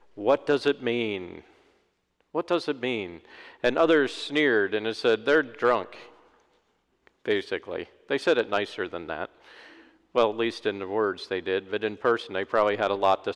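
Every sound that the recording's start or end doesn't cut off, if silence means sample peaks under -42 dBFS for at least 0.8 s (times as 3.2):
2.35–6.09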